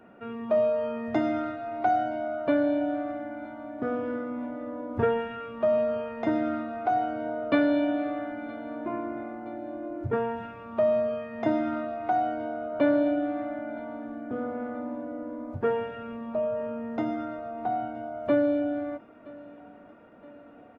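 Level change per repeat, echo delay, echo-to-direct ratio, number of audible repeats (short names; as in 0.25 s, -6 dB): -5.5 dB, 0.97 s, -20.5 dB, 3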